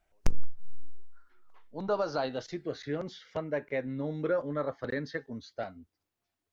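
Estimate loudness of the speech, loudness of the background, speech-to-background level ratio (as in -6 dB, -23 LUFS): -35.0 LUFS, -39.0 LUFS, 4.0 dB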